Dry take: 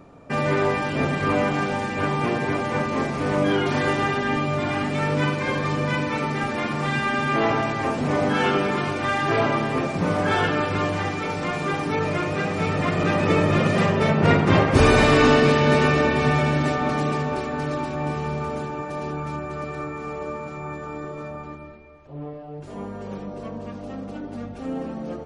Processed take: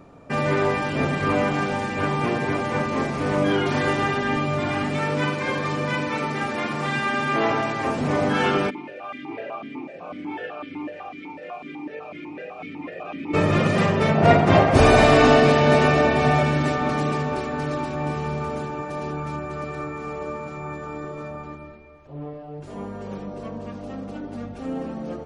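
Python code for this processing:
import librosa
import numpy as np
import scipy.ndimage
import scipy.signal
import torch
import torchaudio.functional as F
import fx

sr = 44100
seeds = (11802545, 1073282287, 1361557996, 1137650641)

y = fx.low_shelf(x, sr, hz=97.0, db=-11.0, at=(4.98, 7.87))
y = fx.vowel_held(y, sr, hz=8.0, at=(8.69, 13.33), fade=0.02)
y = fx.peak_eq(y, sr, hz=690.0, db=12.0, octaves=0.28, at=(14.15, 16.43))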